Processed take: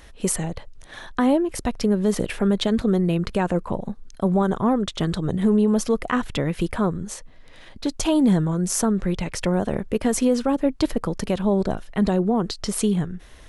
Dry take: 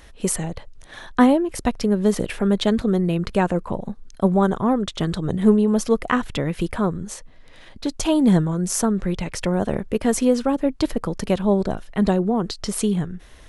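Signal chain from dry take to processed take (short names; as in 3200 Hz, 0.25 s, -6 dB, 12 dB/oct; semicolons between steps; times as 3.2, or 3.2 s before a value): limiter -10.5 dBFS, peak gain reduction 8 dB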